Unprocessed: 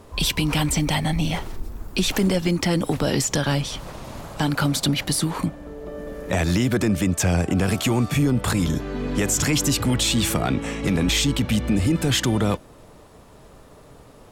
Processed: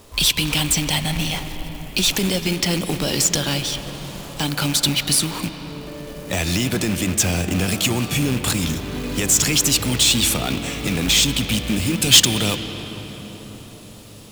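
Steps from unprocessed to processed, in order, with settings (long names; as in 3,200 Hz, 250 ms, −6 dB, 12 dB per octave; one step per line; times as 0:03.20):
loose part that buzzes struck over −20 dBFS, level −26 dBFS
flat-topped bell 5,900 Hz +9 dB 2.8 octaves, from 0:12.01 +15.5 dB
log-companded quantiser 4 bits
convolution reverb RT60 5.2 s, pre-delay 119 ms, DRR 8.5 dB
level −2.5 dB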